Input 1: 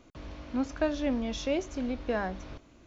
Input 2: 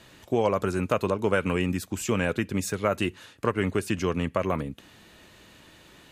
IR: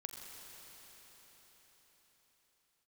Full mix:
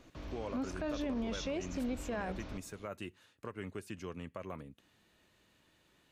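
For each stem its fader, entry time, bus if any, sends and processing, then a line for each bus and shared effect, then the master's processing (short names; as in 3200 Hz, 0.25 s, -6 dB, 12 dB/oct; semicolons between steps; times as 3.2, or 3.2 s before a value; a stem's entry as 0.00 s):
-2.0 dB, 0.00 s, no send, dry
-17.0 dB, 0.00 s, no send, dry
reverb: off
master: limiter -29 dBFS, peak gain reduction 11 dB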